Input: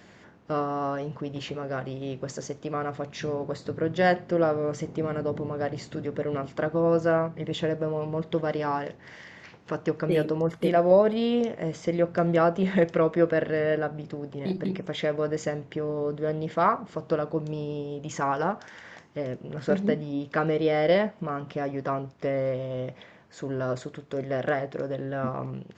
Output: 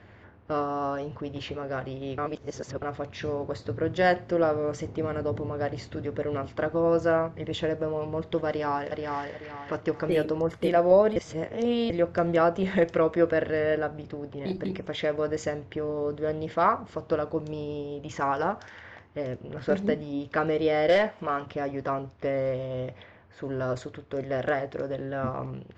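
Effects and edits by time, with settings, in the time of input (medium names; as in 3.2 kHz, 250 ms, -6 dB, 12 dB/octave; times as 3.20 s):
0.62–1.09 s: peaking EQ 2 kHz -6 dB 0.23 oct
2.18–2.82 s: reverse
8.48–9.33 s: echo throw 430 ms, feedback 35%, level -3.5 dB
11.16–11.90 s: reverse
20.89–21.46 s: overdrive pedal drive 11 dB, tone 5.8 kHz, clips at -12.5 dBFS
whole clip: level-controlled noise filter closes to 2.4 kHz, open at -23 dBFS; resonant low shelf 120 Hz +6 dB, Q 3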